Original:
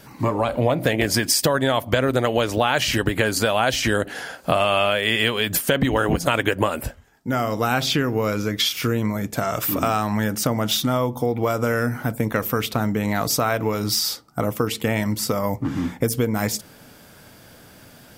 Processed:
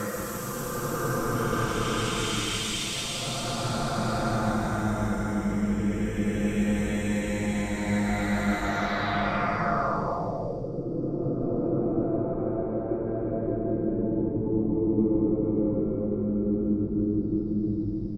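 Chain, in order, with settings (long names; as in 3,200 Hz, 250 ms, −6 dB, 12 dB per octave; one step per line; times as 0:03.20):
extreme stretch with random phases 12×, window 0.25 s, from 0:12.43
echo with shifted repeats 162 ms, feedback 58%, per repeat −150 Hz, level −9 dB
low-pass filter sweep 7,900 Hz → 350 Hz, 0:08.58–0:10.89
comb filter 5.8 ms, depth 40%
level −6 dB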